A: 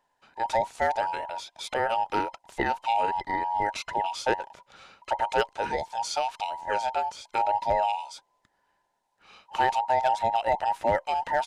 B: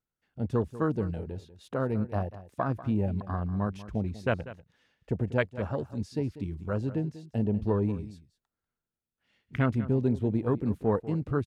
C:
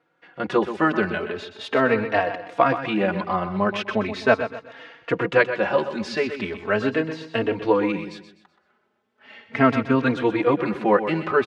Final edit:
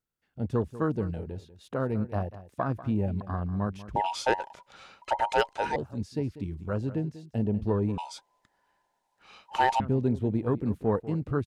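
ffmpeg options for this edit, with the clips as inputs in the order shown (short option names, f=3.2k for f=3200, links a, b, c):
-filter_complex "[0:a]asplit=2[a][b];[1:a]asplit=3[c][d][e];[c]atrim=end=3.962[f];[a]atrim=start=3.958:end=5.762[g];[d]atrim=start=5.758:end=7.982[h];[b]atrim=start=7.978:end=9.802[i];[e]atrim=start=9.798[j];[f][g]acrossfade=d=0.004:c1=hsin:c2=hsin[k];[k][h]acrossfade=d=0.004:c1=hsin:c2=hsin[l];[l][i]acrossfade=d=0.004:c1=hsin:c2=hsin[m];[m][j]acrossfade=d=0.004:c1=hsin:c2=hsin"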